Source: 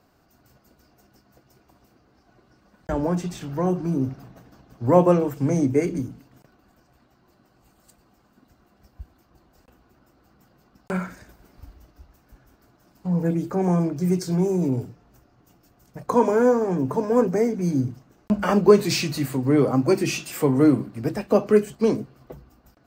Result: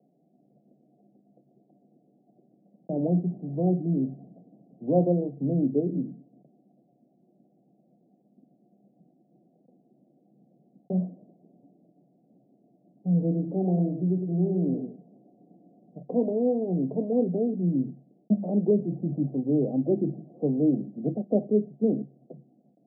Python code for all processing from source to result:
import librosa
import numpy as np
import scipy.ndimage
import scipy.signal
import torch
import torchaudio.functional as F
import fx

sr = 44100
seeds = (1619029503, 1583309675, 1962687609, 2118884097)

y = fx.chain(x, sr, fx.law_mismatch(coded='mu'),
    fx.highpass(hz=150.0, slope=12),
    fx.echo_single(ms=104, db=-7.5), at=(13.22, 15.98))
y = scipy.signal.sosfilt(scipy.signal.cheby1(5, 1.0, [140.0, 730.0], 'bandpass', fs=sr, output='sos'), y)
y = fx.peak_eq(y, sr, hz=200.0, db=6.0, octaves=1.1)
y = fx.rider(y, sr, range_db=4, speed_s=0.5)
y = y * 10.0 ** (-6.5 / 20.0)